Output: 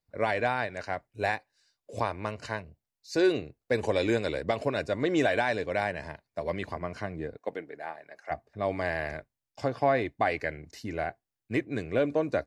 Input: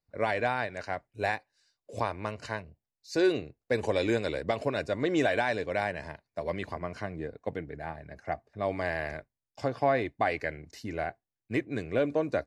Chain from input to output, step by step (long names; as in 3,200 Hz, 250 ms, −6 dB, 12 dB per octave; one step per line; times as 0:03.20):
0:07.37–0:08.30: high-pass filter 260 Hz → 640 Hz 12 dB per octave
level +1 dB